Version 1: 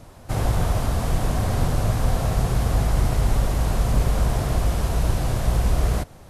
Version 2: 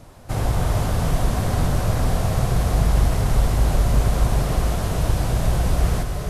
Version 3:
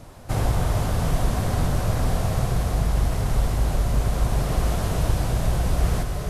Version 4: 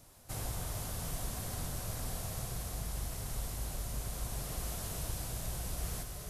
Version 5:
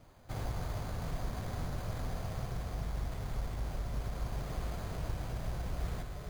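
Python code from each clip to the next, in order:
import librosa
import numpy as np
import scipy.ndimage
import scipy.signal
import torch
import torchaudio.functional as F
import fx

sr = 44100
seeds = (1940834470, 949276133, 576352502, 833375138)

y1 = fx.rev_gated(x, sr, seeds[0], gate_ms=460, shape='rising', drr_db=3.5)
y2 = fx.rider(y1, sr, range_db=4, speed_s=0.5)
y2 = y2 * librosa.db_to_amplitude(-2.5)
y3 = F.preemphasis(torch.from_numpy(y2), 0.8).numpy()
y3 = y3 * librosa.db_to_amplitude(-4.0)
y4 = np.repeat(scipy.signal.resample_poly(y3, 1, 8), 8)[:len(y3)]
y4 = y4 * librosa.db_to_amplitude(2.5)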